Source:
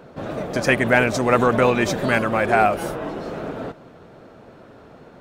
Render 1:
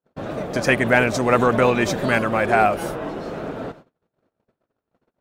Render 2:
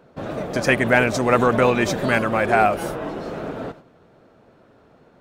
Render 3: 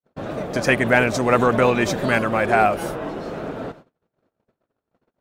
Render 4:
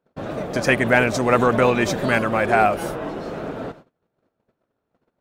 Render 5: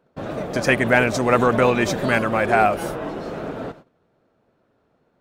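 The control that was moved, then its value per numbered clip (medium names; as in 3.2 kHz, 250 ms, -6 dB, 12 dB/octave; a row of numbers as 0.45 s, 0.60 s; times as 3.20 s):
gate, range: -45 dB, -8 dB, -59 dB, -32 dB, -20 dB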